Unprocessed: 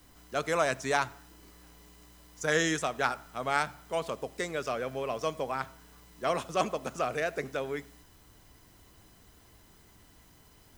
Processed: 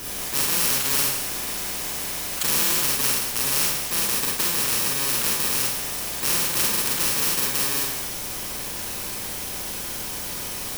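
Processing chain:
samples in bit-reversed order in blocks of 64 samples
four-comb reverb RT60 0.31 s, combs from 31 ms, DRR −3 dB
every bin compressed towards the loudest bin 4 to 1
level +3.5 dB

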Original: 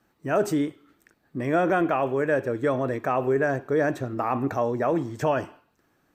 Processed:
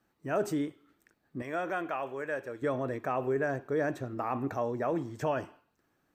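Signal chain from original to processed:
0:01.42–0:02.62: low-shelf EQ 440 Hz −12 dB
level −7 dB

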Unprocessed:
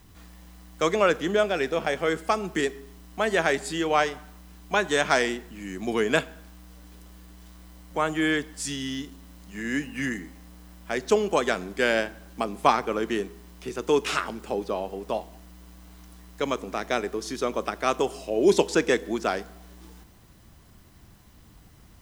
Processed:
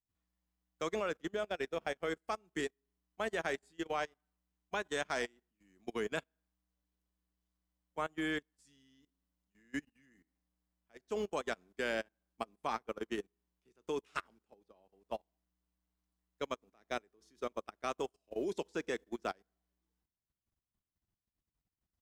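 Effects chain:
output level in coarse steps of 13 dB
expander for the loud parts 2.5 to 1, over −43 dBFS
level −7 dB

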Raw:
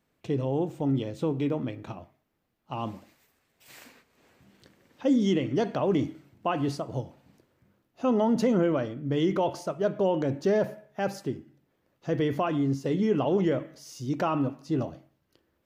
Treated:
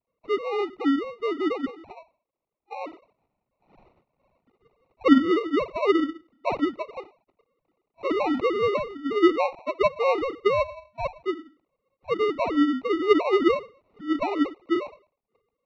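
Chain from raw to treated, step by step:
three sine waves on the formant tracks
decimation without filtering 27×
Bessel low-pass filter 2,400 Hz, order 4
level +3 dB

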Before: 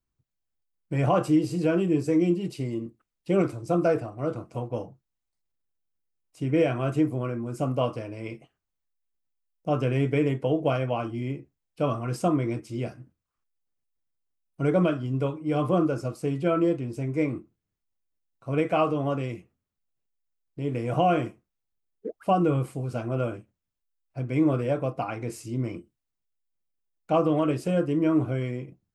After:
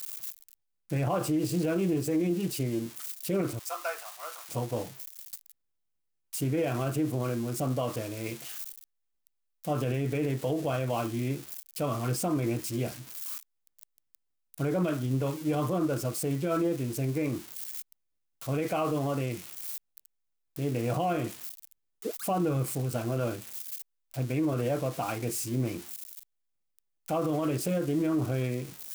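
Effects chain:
spike at every zero crossing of −29 dBFS
0:03.59–0:04.49: high-pass filter 870 Hz 24 dB per octave
brickwall limiter −20.5 dBFS, peak gain reduction 8 dB
highs frequency-modulated by the lows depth 0.15 ms

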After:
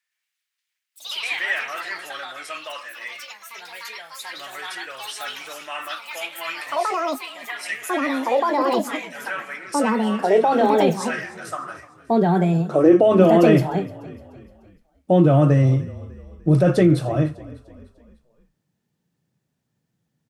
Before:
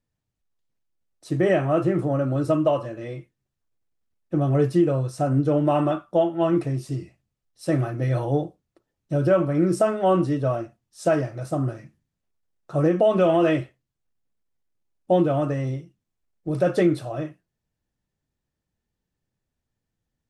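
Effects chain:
gain on a spectral selection 0:07.65–0:08.07, 230–1,800 Hz −11 dB
in parallel at 0 dB: compressor whose output falls as the input rises −23 dBFS, ratio −1
on the sum: high-pass filter sweep 1,900 Hz → 150 Hz, 0:11.25–0:13.66
delay with pitch and tempo change per echo 115 ms, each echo +4 semitones, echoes 3
on a send: echo with shifted repeats 299 ms, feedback 48%, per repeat −30 Hz, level −19.5 dB
on the sum: level −1.5 dB

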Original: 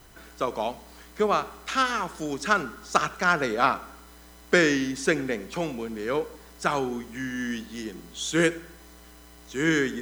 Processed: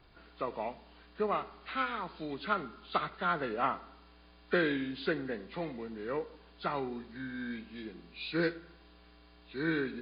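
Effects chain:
hearing-aid frequency compression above 1,300 Hz 1.5 to 1
level −8 dB
MP3 32 kbit/s 11,025 Hz

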